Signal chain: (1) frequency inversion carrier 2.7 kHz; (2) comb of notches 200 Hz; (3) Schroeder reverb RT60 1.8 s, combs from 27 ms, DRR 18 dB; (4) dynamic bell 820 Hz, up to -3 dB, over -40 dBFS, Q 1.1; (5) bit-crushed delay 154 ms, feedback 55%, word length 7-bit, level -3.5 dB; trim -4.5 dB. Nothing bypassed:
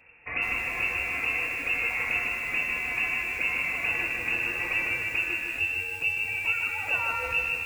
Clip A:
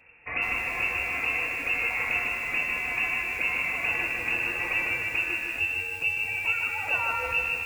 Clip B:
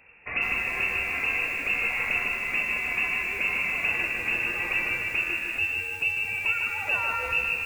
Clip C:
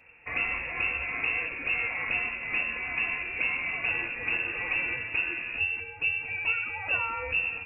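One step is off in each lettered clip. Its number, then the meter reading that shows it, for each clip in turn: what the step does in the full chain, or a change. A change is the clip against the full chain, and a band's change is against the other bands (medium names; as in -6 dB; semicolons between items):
4, 1 kHz band +2.0 dB; 2, loudness change +1.0 LU; 5, loudness change -2.0 LU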